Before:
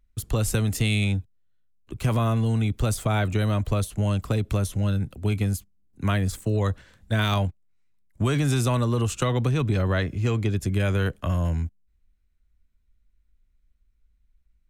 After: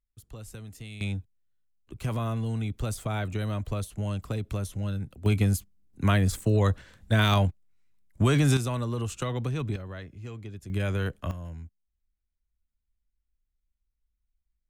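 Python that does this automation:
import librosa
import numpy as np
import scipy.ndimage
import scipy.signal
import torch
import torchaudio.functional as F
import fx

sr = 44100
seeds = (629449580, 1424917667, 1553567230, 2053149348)

y = fx.gain(x, sr, db=fx.steps((0.0, -19.0), (1.01, -7.0), (5.26, 1.0), (8.57, -7.0), (9.76, -16.0), (10.7, -5.0), (11.31, -14.5)))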